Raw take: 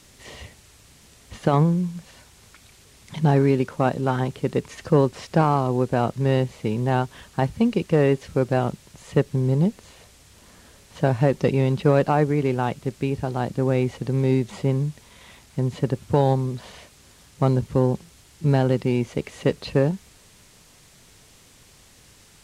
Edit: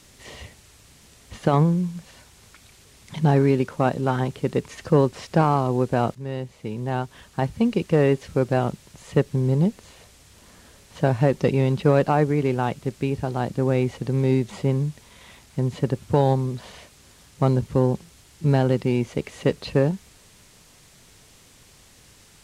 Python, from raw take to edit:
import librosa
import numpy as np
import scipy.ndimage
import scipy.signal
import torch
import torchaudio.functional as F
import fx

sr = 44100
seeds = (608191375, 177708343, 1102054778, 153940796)

y = fx.edit(x, sr, fx.fade_in_from(start_s=6.15, length_s=1.66, floor_db=-12.5), tone=tone)